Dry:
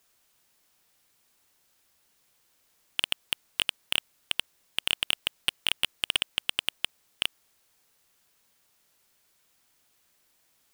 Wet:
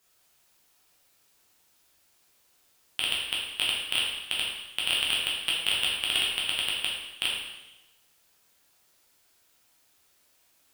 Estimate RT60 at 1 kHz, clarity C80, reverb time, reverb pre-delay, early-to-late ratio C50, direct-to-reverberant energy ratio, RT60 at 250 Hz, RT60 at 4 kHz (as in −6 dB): 1.0 s, 4.0 dB, 1.0 s, 7 ms, 1.0 dB, −5.0 dB, 1.0 s, 1.0 s